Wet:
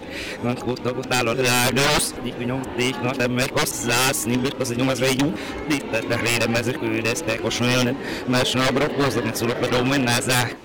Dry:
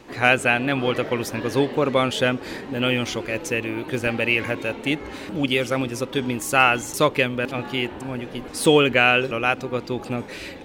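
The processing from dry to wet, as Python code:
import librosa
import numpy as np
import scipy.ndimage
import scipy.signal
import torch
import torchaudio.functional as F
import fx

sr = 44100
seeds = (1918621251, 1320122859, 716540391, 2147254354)

y = np.flip(x).copy()
y = 10.0 ** (-18.0 / 20.0) * (np.abs((y / 10.0 ** (-18.0 / 20.0) + 3.0) % 4.0 - 2.0) - 1.0)
y = fx.end_taper(y, sr, db_per_s=180.0)
y = F.gain(torch.from_numpy(y), 5.0).numpy()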